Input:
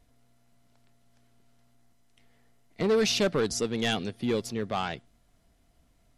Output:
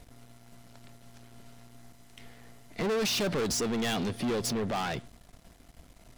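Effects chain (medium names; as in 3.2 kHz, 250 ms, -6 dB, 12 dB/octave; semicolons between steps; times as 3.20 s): peak limiter -28 dBFS, peak gain reduction 10 dB; waveshaping leveller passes 3; trim +2 dB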